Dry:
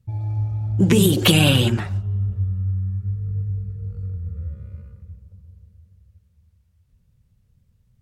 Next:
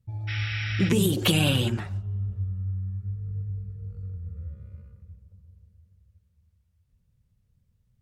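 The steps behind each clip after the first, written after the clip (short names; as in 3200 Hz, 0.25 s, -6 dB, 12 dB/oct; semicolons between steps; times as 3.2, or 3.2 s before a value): spectral repair 0.31–0.86, 1200–5700 Hz after; gain -7 dB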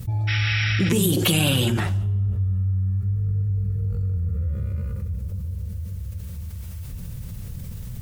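high shelf 9000 Hz +10 dB; resonator 170 Hz, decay 0.79 s, harmonics all, mix 50%; fast leveller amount 70%; gain +5 dB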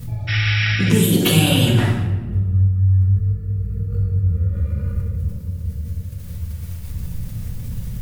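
shoebox room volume 660 m³, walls mixed, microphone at 1.8 m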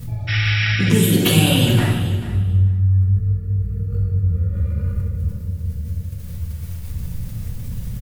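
feedback echo 0.439 s, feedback 17%, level -14 dB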